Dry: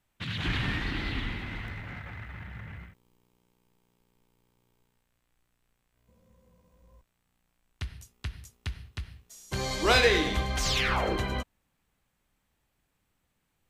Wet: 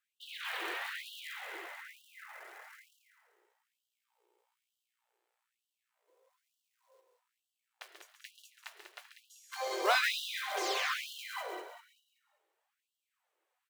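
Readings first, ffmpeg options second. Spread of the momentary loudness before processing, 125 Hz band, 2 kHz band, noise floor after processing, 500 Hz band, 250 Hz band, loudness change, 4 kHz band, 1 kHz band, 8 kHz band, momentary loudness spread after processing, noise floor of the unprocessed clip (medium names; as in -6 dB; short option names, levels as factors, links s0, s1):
19 LU, under -40 dB, -5.5 dB, under -85 dBFS, -9.5 dB, -17.5 dB, -6.5 dB, -6.5 dB, -4.0 dB, -6.5 dB, 23 LU, -77 dBFS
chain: -filter_complex "[0:a]tiltshelf=f=1500:g=5.5,asplit=2[s0][s1];[s1]aecho=0:1:136|272|408:0.355|0.0745|0.0156[s2];[s0][s2]amix=inputs=2:normalize=0,acrusher=bits=6:mode=log:mix=0:aa=0.000001,flanger=delay=1.2:depth=2.9:regen=71:speed=0.77:shape=sinusoidal,asplit=2[s3][s4];[s4]asplit=5[s5][s6][s7][s8][s9];[s5]adelay=193,afreqshift=-38,volume=0.422[s10];[s6]adelay=386,afreqshift=-76,volume=0.178[s11];[s7]adelay=579,afreqshift=-114,volume=0.0741[s12];[s8]adelay=772,afreqshift=-152,volume=0.0313[s13];[s9]adelay=965,afreqshift=-190,volume=0.0132[s14];[s10][s11][s12][s13][s14]amix=inputs=5:normalize=0[s15];[s3][s15]amix=inputs=2:normalize=0,afftfilt=real='re*gte(b*sr/1024,310*pow(2800/310,0.5+0.5*sin(2*PI*1.1*pts/sr)))':imag='im*gte(b*sr/1024,310*pow(2800/310,0.5+0.5*sin(2*PI*1.1*pts/sr)))':win_size=1024:overlap=0.75"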